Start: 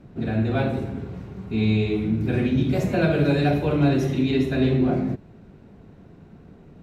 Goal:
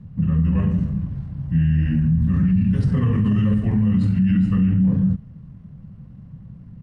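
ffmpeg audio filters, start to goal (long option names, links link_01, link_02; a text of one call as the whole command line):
ffmpeg -i in.wav -af "asetrate=32097,aresample=44100,atempo=1.37395,lowshelf=frequency=250:width_type=q:width=3:gain=8.5,alimiter=limit=-8dB:level=0:latency=1:release=39,volume=-3.5dB" out.wav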